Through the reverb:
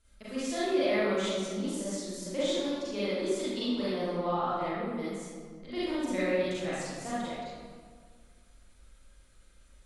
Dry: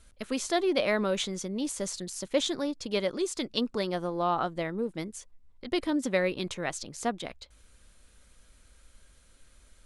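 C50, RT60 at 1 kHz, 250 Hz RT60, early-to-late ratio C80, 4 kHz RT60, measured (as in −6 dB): −6.0 dB, 1.7 s, 2.0 s, −2.0 dB, 1.1 s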